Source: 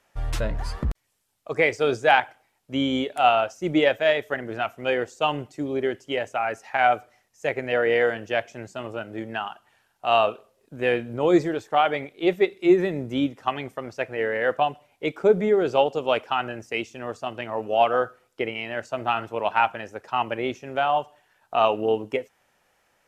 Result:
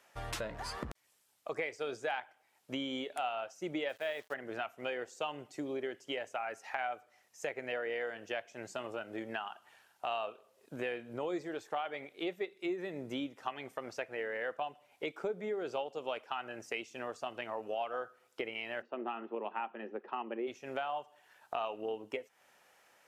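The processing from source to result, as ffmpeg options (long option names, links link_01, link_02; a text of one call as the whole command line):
ffmpeg -i in.wav -filter_complex "[0:a]asettb=1/sr,asplit=3[link_01][link_02][link_03];[link_01]atrim=end=3.894[link_04];[link_02]atrim=start=3.89:end=4.34,asetpts=PTS-STARTPTS,afade=type=in:duration=0.004:curve=qsin,afade=type=out:start_time=0.446:duration=0.004:curve=qsin,acrusher=bits=6:mix=0:aa=0.5[link_05];[link_03]atrim=start=4.336[link_06];[link_04][link_05]acrossfade=duration=0.004:curve1=hsin:curve2=qsin[link_07];[link_07][link_06]acrossfade=duration=0.004:curve1=qsin:curve2=hsin,asplit=3[link_08][link_09][link_10];[link_08]afade=type=out:start_time=18.81:duration=0.02[link_11];[link_09]highpass=frequency=210:width=0.5412,highpass=frequency=210:width=1.3066,equalizer=frequency=220:width_type=q:width=4:gain=9,equalizer=frequency=370:width_type=q:width=4:gain=9,equalizer=frequency=650:width_type=q:width=4:gain=-7,equalizer=frequency=970:width_type=q:width=4:gain=-4,equalizer=frequency=1500:width_type=q:width=4:gain=-8,equalizer=frequency=2200:width_type=q:width=4:gain=-8,lowpass=frequency=2500:width=0.5412,lowpass=frequency=2500:width=1.3066,afade=type=in:start_time=18.81:duration=0.02,afade=type=out:start_time=20.46:duration=0.02[link_12];[link_10]afade=type=in:start_time=20.46:duration=0.02[link_13];[link_11][link_12][link_13]amix=inputs=3:normalize=0,highpass=frequency=380:poles=1,acompressor=threshold=-39dB:ratio=4,volume=1.5dB" out.wav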